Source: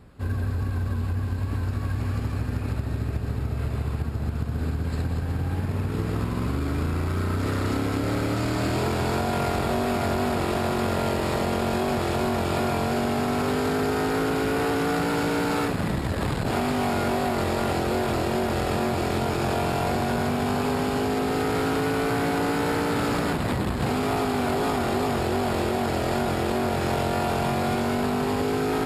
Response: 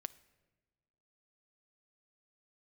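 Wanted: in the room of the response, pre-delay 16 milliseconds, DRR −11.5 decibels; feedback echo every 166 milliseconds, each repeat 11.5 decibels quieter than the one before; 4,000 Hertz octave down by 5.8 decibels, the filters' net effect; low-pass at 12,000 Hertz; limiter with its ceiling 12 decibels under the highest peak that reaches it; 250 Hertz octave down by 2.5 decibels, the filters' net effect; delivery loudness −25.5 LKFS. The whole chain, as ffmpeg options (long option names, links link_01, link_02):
-filter_complex "[0:a]lowpass=12000,equalizer=frequency=250:width_type=o:gain=-3,equalizer=frequency=4000:width_type=o:gain=-7.5,alimiter=level_in=2dB:limit=-24dB:level=0:latency=1,volume=-2dB,aecho=1:1:166|332|498:0.266|0.0718|0.0194,asplit=2[link_01][link_02];[1:a]atrim=start_sample=2205,adelay=16[link_03];[link_02][link_03]afir=irnorm=-1:irlink=0,volume=15dB[link_04];[link_01][link_04]amix=inputs=2:normalize=0,volume=-3.5dB"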